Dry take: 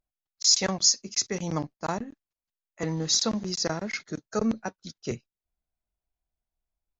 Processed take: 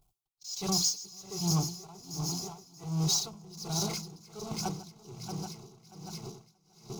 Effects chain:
feedback delay that plays each chunk backwards 316 ms, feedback 71%, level −9 dB
mains-hum notches 60/120/180 Hz
noise gate with hold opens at −40 dBFS
low-shelf EQ 180 Hz +7.5 dB
power curve on the samples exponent 0.5
phaser with its sweep stopped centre 350 Hz, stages 8
notch comb filter 310 Hz
on a send: feedback echo with a high-pass in the loop 404 ms, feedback 74%, high-pass 660 Hz, level −17.5 dB
on the sum: tremolo with a sine in dB 1.3 Hz, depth 21 dB
level −7 dB

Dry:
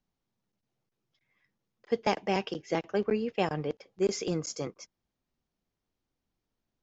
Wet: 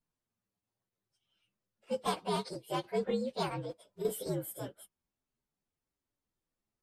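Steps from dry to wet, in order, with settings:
partials spread apart or drawn together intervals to 118%
low-shelf EQ 410 Hz −3.5 dB
0:03.59–0:04.05: downward compressor, threshold −37 dBFS, peak gain reduction 10.5 dB

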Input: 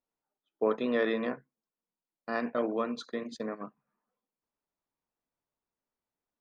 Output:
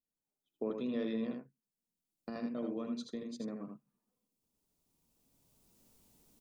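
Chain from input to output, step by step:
camcorder AGC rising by 12 dB per second
drawn EQ curve 210 Hz 0 dB, 620 Hz −11 dB, 1,700 Hz −17 dB, 2,600 Hz −9 dB, 8,300 Hz −1 dB
single-tap delay 80 ms −5 dB
level −3 dB

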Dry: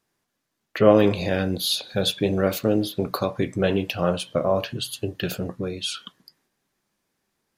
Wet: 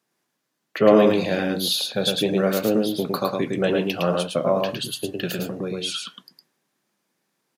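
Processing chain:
high-pass filter 140 Hz 24 dB per octave
on a send: single-tap delay 109 ms −3 dB

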